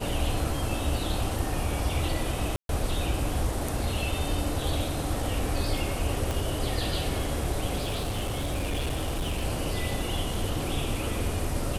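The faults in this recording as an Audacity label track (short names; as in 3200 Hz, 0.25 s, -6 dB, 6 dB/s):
2.560000	2.690000	gap 0.132 s
6.310000	6.310000	pop
7.810000	9.450000	clipped -25 dBFS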